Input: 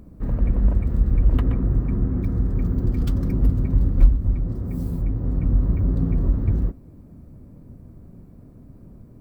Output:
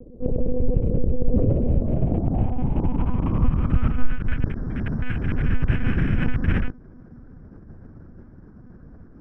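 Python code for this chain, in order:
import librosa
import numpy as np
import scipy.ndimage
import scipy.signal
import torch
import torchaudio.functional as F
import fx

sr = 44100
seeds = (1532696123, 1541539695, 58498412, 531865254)

y = fx.rattle_buzz(x, sr, strikes_db=-18.0, level_db=-20.0)
y = fx.lpc_monotone(y, sr, seeds[0], pitch_hz=250.0, order=10)
y = np.repeat(y[::8], 8)[:len(y)]
y = fx.filter_sweep_lowpass(y, sr, from_hz=500.0, to_hz=1600.0, start_s=1.38, end_s=4.37, q=6.1)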